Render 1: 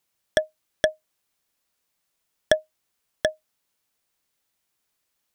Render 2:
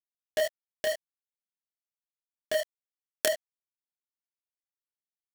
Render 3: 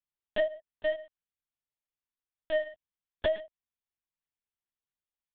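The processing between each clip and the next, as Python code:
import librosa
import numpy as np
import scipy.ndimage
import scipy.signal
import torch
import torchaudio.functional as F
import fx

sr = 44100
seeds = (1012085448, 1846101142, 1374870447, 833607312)

y1 = fx.over_compress(x, sr, threshold_db=-24.0, ratio=-1.0)
y1 = fx.quant_companded(y1, sr, bits=2)
y1 = fx.detune_double(y1, sr, cents=59)
y1 = F.gain(torch.from_numpy(y1), 5.0).numpy()
y2 = y1 + 10.0 ** (-16.5 / 20.0) * np.pad(y1, (int(114 * sr / 1000.0), 0))[:len(y1)]
y2 = fx.lpc_vocoder(y2, sr, seeds[0], excitation='pitch_kept', order=8)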